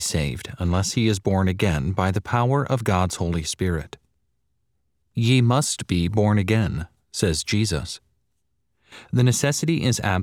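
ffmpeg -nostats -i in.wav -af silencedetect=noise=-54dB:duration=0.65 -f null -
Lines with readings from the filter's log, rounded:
silence_start: 4.05
silence_end: 5.15 | silence_duration: 1.11
silence_start: 7.99
silence_end: 8.86 | silence_duration: 0.87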